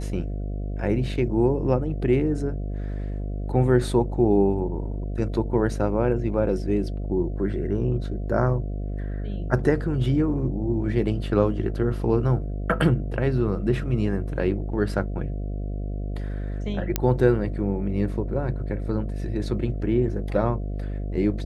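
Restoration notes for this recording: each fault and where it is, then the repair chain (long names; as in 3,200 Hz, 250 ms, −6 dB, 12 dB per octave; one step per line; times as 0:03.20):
mains buzz 50 Hz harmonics 14 −29 dBFS
0:16.96: click −6 dBFS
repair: click removal
hum removal 50 Hz, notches 14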